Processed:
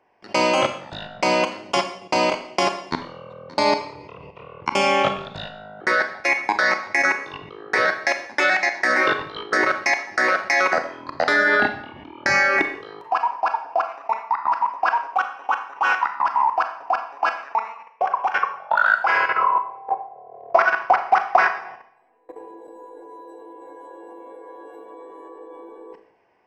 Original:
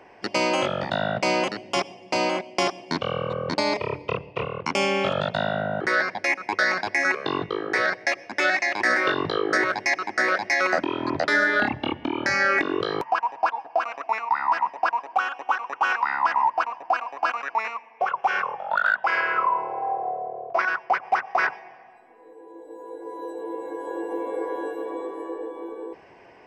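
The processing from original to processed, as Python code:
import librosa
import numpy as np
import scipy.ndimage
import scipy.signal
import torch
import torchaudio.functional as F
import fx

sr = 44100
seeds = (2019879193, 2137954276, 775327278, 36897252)

y = fx.peak_eq(x, sr, hz=970.0, db=4.0, octaves=0.91)
y = fx.level_steps(y, sr, step_db=23)
y = fx.transient(y, sr, attack_db=7, sustain_db=3, at=(20.34, 22.51))
y = fx.rev_schroeder(y, sr, rt60_s=0.56, comb_ms=28, drr_db=7.0)
y = y * 10.0 ** (4.5 / 20.0)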